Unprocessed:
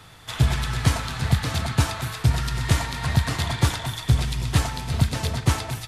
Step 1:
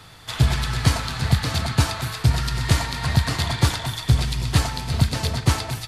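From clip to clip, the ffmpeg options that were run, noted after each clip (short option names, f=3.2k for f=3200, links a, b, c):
-af "equalizer=f=4.5k:t=o:w=0.3:g=5,volume=1.5dB"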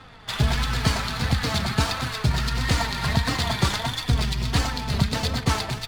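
-filter_complex "[0:a]asplit=2[a][b];[b]alimiter=limit=-15dB:level=0:latency=1:release=93,volume=-1dB[c];[a][c]amix=inputs=2:normalize=0,adynamicsmooth=sensitivity=7.5:basefreq=2k,flanger=delay=3.7:depth=1.5:regen=31:speed=1.5:shape=triangular"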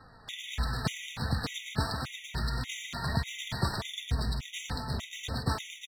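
-af "aecho=1:1:153:0.376,afftfilt=real='re*gt(sin(2*PI*1.7*pts/sr)*(1-2*mod(floor(b*sr/1024/1900),2)),0)':imag='im*gt(sin(2*PI*1.7*pts/sr)*(1-2*mod(floor(b*sr/1024/1900),2)),0)':win_size=1024:overlap=0.75,volume=-7.5dB"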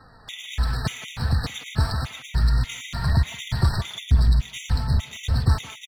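-filter_complex "[0:a]asplit=2[a][b];[b]adelay=170,highpass=300,lowpass=3.4k,asoftclip=type=hard:threshold=-24.5dB,volume=-13dB[c];[a][c]amix=inputs=2:normalize=0,asubboost=boost=6:cutoff=130,asoftclip=type=tanh:threshold=-12.5dB,volume=4dB"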